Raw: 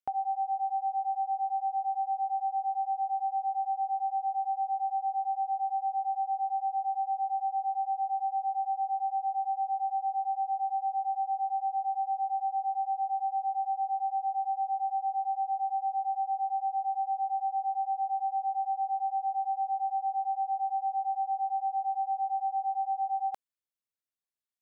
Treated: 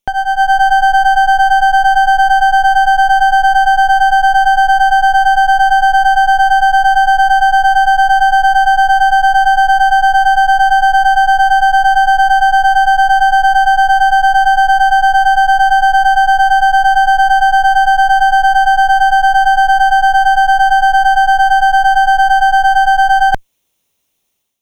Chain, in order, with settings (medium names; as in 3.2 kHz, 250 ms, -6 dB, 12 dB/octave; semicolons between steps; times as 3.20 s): comb filter that takes the minimum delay 0.31 ms; level rider gain up to 12 dB; loudness maximiser +17.5 dB; trim -1 dB